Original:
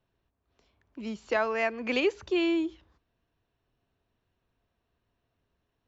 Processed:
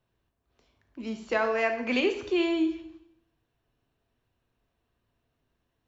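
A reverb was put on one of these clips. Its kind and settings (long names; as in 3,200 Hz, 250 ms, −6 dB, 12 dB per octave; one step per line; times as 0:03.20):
dense smooth reverb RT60 0.79 s, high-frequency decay 0.95×, DRR 5.5 dB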